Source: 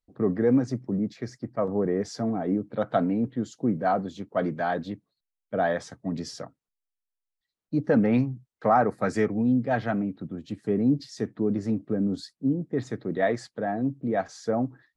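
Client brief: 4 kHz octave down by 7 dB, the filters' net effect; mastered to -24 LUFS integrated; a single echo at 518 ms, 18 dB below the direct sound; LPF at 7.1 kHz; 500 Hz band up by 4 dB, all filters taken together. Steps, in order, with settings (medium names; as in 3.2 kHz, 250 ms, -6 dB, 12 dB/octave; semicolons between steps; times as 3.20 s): low-pass 7.1 kHz; peaking EQ 500 Hz +5 dB; peaking EQ 4 kHz -8.5 dB; delay 518 ms -18 dB; trim +1 dB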